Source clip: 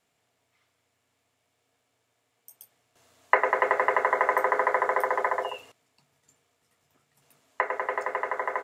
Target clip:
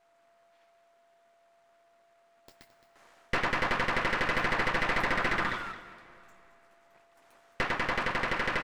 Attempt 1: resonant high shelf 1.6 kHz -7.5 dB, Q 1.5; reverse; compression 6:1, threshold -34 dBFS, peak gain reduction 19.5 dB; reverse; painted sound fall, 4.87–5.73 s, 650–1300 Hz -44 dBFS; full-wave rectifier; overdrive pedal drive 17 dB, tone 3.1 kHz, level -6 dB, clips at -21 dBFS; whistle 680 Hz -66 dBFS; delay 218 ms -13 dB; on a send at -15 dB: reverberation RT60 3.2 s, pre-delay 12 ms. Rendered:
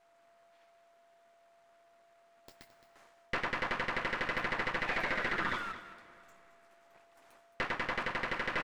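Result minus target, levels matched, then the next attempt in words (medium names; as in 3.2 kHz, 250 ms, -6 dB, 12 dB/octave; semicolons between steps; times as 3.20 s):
compression: peak gain reduction +9.5 dB
resonant high shelf 1.6 kHz -7.5 dB, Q 1.5; reverse; compression 6:1, threshold -22.5 dBFS, peak gain reduction 10 dB; reverse; painted sound fall, 4.87–5.73 s, 650–1300 Hz -44 dBFS; full-wave rectifier; overdrive pedal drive 17 dB, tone 3.1 kHz, level -6 dB, clips at -21 dBFS; whistle 680 Hz -66 dBFS; delay 218 ms -13 dB; on a send at -15 dB: reverberation RT60 3.2 s, pre-delay 12 ms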